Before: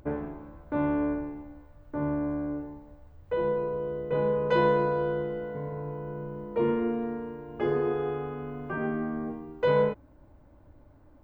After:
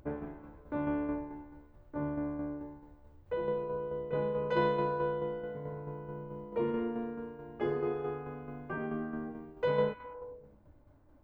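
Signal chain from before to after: repeats whose band climbs or falls 103 ms, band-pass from 3.2 kHz, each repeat -0.7 oct, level -8 dB; tremolo saw down 4.6 Hz, depth 45%; trim -4 dB

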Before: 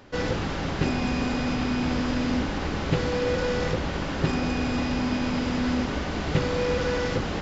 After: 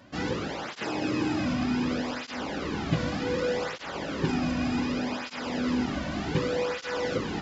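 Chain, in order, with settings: 0.65–1.46 s: frequency shift +58 Hz; cancelling through-zero flanger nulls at 0.66 Hz, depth 2.5 ms

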